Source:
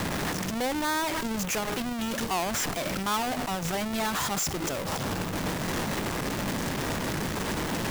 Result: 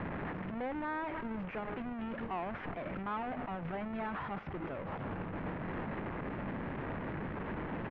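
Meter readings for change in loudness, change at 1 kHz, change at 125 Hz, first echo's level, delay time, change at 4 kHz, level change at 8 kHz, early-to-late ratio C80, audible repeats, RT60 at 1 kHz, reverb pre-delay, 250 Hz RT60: -10.5 dB, -9.0 dB, -8.0 dB, -19.5 dB, 306 ms, -25.0 dB, under -40 dB, no reverb, 1, no reverb, no reverb, no reverb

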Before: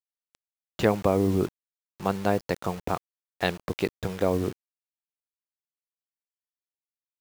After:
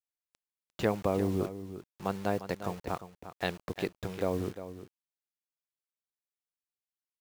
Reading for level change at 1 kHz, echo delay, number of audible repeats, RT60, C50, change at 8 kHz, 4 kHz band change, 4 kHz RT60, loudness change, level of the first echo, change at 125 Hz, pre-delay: -6.0 dB, 351 ms, 1, no reverb, no reverb, -6.0 dB, -6.0 dB, no reverb, -6.5 dB, -12.0 dB, -6.0 dB, no reverb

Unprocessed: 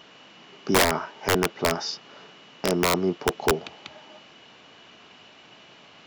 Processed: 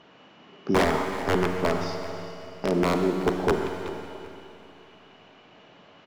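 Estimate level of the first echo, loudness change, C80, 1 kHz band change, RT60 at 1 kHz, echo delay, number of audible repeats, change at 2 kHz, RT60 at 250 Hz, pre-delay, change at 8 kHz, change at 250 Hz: -15.0 dB, -2.0 dB, 4.5 dB, -0.5 dB, 2.8 s, 382 ms, 2, -3.5 dB, 2.8 s, 36 ms, -12.0 dB, +2.0 dB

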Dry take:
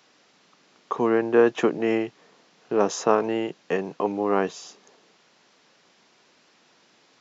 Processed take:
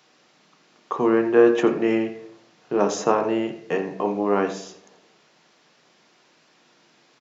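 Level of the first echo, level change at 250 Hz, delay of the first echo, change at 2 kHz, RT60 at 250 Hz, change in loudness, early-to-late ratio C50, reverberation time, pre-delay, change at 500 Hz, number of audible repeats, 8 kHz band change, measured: -14.5 dB, +3.5 dB, 85 ms, +1.0 dB, 0.85 s, +2.0 dB, 9.5 dB, 0.70 s, 3 ms, +2.0 dB, 1, no reading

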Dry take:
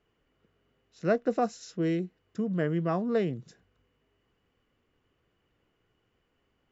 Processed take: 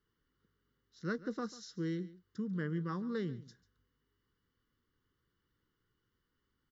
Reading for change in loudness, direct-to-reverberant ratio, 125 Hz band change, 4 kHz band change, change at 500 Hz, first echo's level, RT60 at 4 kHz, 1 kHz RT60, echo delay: -9.5 dB, no reverb, -6.5 dB, -4.5 dB, -13.0 dB, -18.0 dB, no reverb, no reverb, 142 ms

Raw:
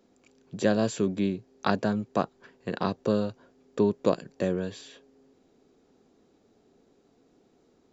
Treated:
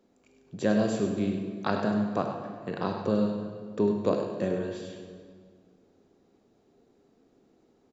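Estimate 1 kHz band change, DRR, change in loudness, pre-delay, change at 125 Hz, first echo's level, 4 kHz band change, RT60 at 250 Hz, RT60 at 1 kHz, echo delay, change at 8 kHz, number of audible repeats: -1.0 dB, 2.5 dB, -0.5 dB, 21 ms, -0.5 dB, -8.5 dB, -3.5 dB, 2.1 s, 1.8 s, 100 ms, no reading, 1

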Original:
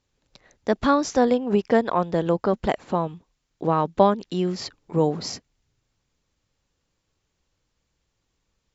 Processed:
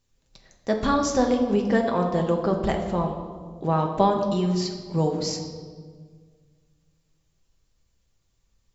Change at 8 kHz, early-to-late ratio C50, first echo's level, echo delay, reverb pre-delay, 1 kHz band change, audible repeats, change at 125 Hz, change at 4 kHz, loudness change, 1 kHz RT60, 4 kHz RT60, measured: no reading, 6.0 dB, no echo, no echo, 5 ms, -1.5 dB, no echo, +2.0 dB, +1.0 dB, -1.0 dB, 1.5 s, 1.1 s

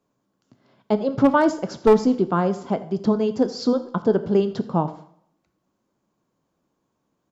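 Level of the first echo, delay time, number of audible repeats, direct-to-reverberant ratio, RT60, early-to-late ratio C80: -19.5 dB, 83 ms, 1, 11.0 dB, 0.60 s, 16.0 dB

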